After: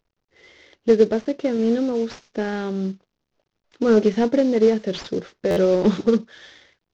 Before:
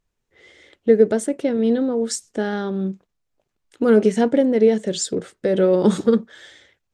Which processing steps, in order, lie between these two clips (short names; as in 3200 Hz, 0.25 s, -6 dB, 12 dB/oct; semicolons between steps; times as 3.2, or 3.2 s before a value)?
CVSD 32 kbps; stuck buffer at 5.5, samples 512, times 5; gain -1 dB